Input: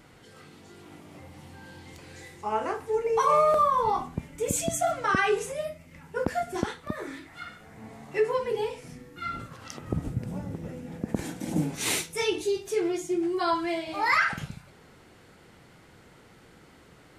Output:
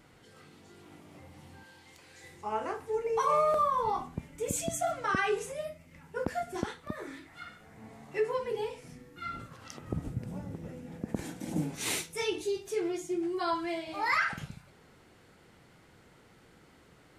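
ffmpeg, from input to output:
-filter_complex "[0:a]asettb=1/sr,asplit=3[s0][s1][s2];[s0]atrim=end=1.634[s3];[s1]atrim=start=1.63:end=2.24,asetpts=PTS-STARTPTS,afade=t=in:d=0.004:c=qsin,afade=t=out:st=0.606:d=0.004:c=qsin,lowshelf=f=440:g=-11[s4];[s2]atrim=start=2.236[s5];[s3][s4]acrossfade=d=0.004:c1=hsin:c2=qsin[s6];[s6][s5]acrossfade=d=0.004:c1=qsin:c2=hsin,volume=0.562"

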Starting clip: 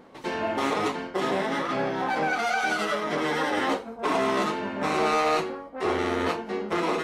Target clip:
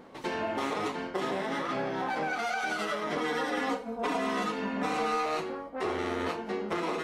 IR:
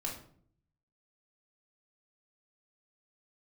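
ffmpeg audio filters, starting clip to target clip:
-filter_complex "[0:a]asettb=1/sr,asplit=3[s0][s1][s2];[s0]atrim=end=3.164[s3];[s1]atrim=start=3.16:end=5.26,asetpts=PTS-STARTPTS,afade=t=in:d=0.004:c=qsin,afade=t=out:st=2.096:d=0.004:c=qsin,aecho=1:1:4.1:0.94,atrim=end_sample=92610[s4];[s2]atrim=start=5.256[s5];[s3][s4]acrossfade=d=0.004:c1=hsin:c2=qsin[s6];[s6][s5]acrossfade=d=0.004:c1=qsin:c2=hsin,acompressor=threshold=0.0316:ratio=3"

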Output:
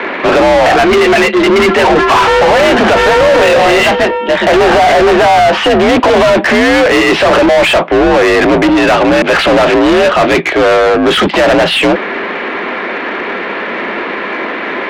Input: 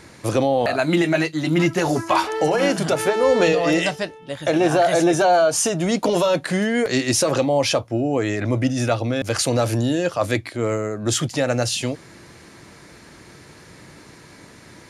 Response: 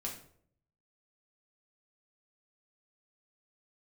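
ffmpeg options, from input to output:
-filter_complex "[0:a]highpass=f=160:t=q:w=0.5412,highpass=f=160:t=q:w=1.307,lowpass=f=3200:t=q:w=0.5176,lowpass=f=3200:t=q:w=0.7071,lowpass=f=3200:t=q:w=1.932,afreqshift=51,asplit=2[s0][s1];[s1]highpass=f=720:p=1,volume=44.7,asoftclip=type=tanh:threshold=0.501[s2];[s0][s2]amix=inputs=2:normalize=0,lowpass=f=2400:p=1,volume=0.501,acontrast=76"

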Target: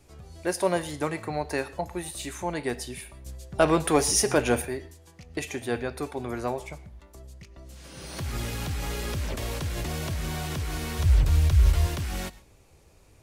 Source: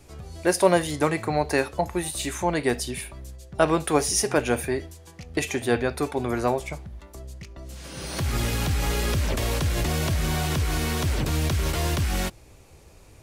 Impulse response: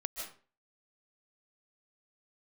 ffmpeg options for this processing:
-filter_complex "[0:a]asettb=1/sr,asplit=3[s0][s1][s2];[s0]atrim=end=3.264[s3];[s1]atrim=start=3.26:end=4.62,asetpts=PTS-STARTPTS,afade=t=in:d=0.004:c=qsin,afade=t=out:st=1.356:d=0.004:c=qsin,acontrast=85[s4];[s2]atrim=start=4.616[s5];[s3][s4]acrossfade=d=0.004:c1=hsin:c2=qsin[s6];[s6][s5]acrossfade=d=0.004:c1=qsin:c2=hsin,asplit=3[s7][s8][s9];[s7]afade=t=out:st=10.98:d=0.02[s10];[s8]asubboost=boost=9.5:cutoff=73,afade=t=in:st=10.98:d=0.02,afade=t=out:st=11.85:d=0.02[s11];[s9]afade=t=in:st=11.85:d=0.02[s12];[s10][s11][s12]amix=inputs=3:normalize=0,asplit=2[s13][s14];[1:a]atrim=start_sample=2205,asetrate=61740,aresample=44100[s15];[s14][s15]afir=irnorm=-1:irlink=0,volume=0.266[s16];[s13][s16]amix=inputs=2:normalize=0,volume=0.422"

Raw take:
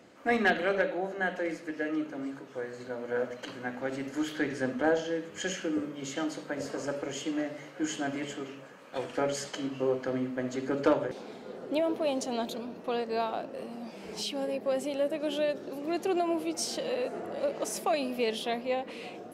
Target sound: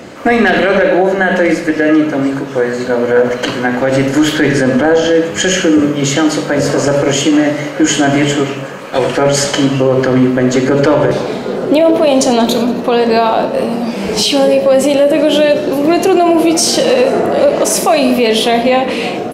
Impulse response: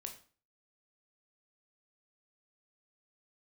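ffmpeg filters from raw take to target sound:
-filter_complex "[0:a]aecho=1:1:92|184|276|368|460:0.126|0.073|0.0424|0.0246|0.0142,asplit=2[s0][s1];[1:a]atrim=start_sample=2205,lowshelf=f=140:g=9[s2];[s1][s2]afir=irnorm=-1:irlink=0,volume=2.11[s3];[s0][s3]amix=inputs=2:normalize=0,alimiter=level_in=7.94:limit=0.891:release=50:level=0:latency=1,volume=0.891"

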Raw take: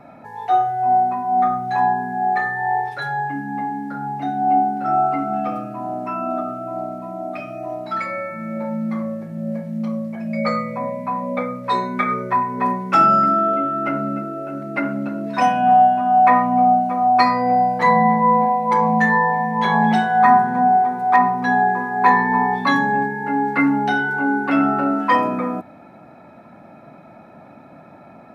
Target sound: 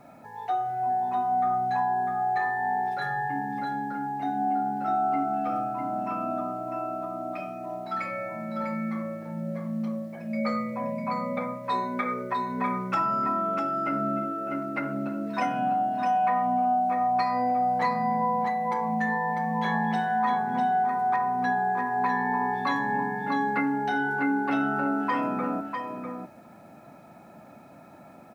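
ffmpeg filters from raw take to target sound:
-af "acompressor=threshold=0.141:ratio=6,acrusher=bits=9:mix=0:aa=0.000001,aecho=1:1:649:0.531,volume=0.447"

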